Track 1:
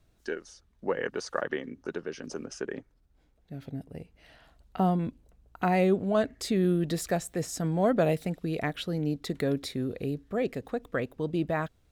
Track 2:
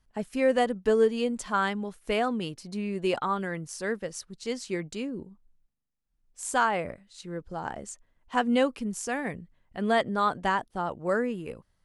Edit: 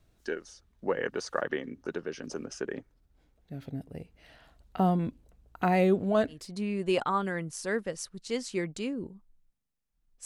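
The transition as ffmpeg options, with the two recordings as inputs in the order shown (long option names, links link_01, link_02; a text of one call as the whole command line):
ffmpeg -i cue0.wav -i cue1.wav -filter_complex "[0:a]apad=whole_dur=10.25,atrim=end=10.25,atrim=end=6.49,asetpts=PTS-STARTPTS[link_01];[1:a]atrim=start=2.43:end=6.41,asetpts=PTS-STARTPTS[link_02];[link_01][link_02]acrossfade=duration=0.22:curve1=tri:curve2=tri" out.wav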